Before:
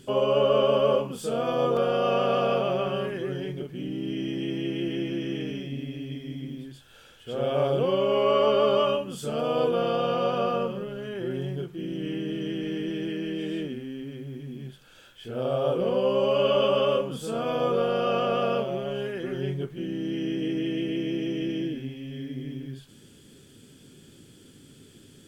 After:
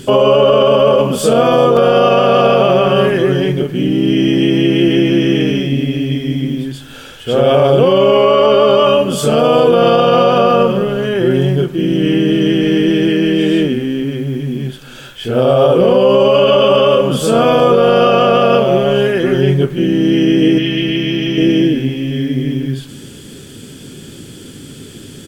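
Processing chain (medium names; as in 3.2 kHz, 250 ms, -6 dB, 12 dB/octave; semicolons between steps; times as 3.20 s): 20.58–21.38 s: ten-band graphic EQ 250 Hz -5 dB, 500 Hz -10 dB, 4 kHz +5 dB, 8 kHz -9 dB; delay 387 ms -21.5 dB; loudness maximiser +19.5 dB; trim -1 dB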